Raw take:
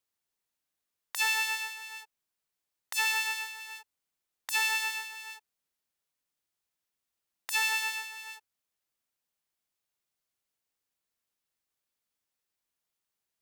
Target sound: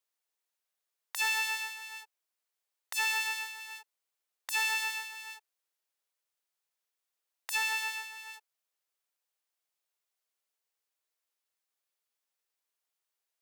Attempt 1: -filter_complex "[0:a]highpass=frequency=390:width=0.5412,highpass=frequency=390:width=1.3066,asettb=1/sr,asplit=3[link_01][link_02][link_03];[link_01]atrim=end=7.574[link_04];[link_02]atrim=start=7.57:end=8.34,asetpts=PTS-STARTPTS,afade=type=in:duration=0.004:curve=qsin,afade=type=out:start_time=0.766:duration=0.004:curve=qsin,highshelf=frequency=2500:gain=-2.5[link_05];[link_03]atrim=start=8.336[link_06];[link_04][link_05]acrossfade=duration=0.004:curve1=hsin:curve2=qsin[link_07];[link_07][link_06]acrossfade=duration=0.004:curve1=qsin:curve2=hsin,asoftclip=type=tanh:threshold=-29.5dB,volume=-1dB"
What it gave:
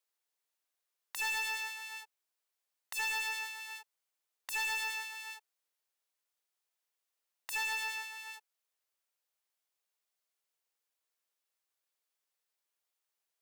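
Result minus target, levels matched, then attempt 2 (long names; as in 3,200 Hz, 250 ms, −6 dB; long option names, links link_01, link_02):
soft clipping: distortion +13 dB
-filter_complex "[0:a]highpass=frequency=390:width=0.5412,highpass=frequency=390:width=1.3066,asettb=1/sr,asplit=3[link_01][link_02][link_03];[link_01]atrim=end=7.574[link_04];[link_02]atrim=start=7.57:end=8.34,asetpts=PTS-STARTPTS,afade=type=in:duration=0.004:curve=qsin,afade=type=out:start_time=0.766:duration=0.004:curve=qsin,highshelf=frequency=2500:gain=-2.5[link_05];[link_03]atrim=start=8.336[link_06];[link_04][link_05]acrossfade=duration=0.004:curve1=hsin:curve2=qsin[link_07];[link_07][link_06]acrossfade=duration=0.004:curve1=qsin:curve2=hsin,asoftclip=type=tanh:threshold=-17.5dB,volume=-1dB"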